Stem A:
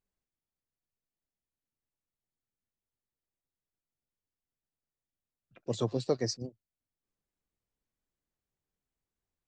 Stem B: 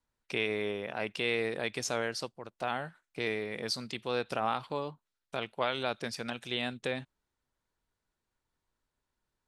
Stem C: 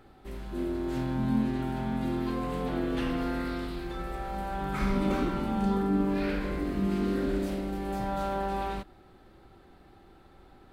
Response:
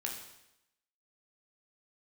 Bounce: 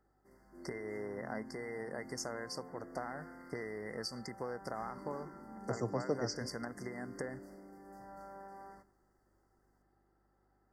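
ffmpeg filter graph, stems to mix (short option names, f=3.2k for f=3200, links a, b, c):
-filter_complex "[0:a]volume=-7.5dB,asplit=2[a][b];[b]volume=-12dB[c];[1:a]acompressor=threshold=-38dB:ratio=12,adelay=350,volume=1.5dB[d];[2:a]highpass=f=250:p=1,volume=-20dB,asplit=2[e][f];[f]volume=-10.5dB[g];[3:a]atrim=start_sample=2205[h];[c][g]amix=inputs=2:normalize=0[i];[i][h]afir=irnorm=-1:irlink=0[j];[a][d][e][j]amix=inputs=4:normalize=0,afftfilt=real='re*(1-between(b*sr/4096,2100,4500))':imag='im*(1-between(b*sr/4096,2100,4500))':win_size=4096:overlap=0.75,aeval=exprs='val(0)+0.000158*(sin(2*PI*50*n/s)+sin(2*PI*2*50*n/s)/2+sin(2*PI*3*50*n/s)/3+sin(2*PI*4*50*n/s)/4+sin(2*PI*5*50*n/s)/5)':c=same"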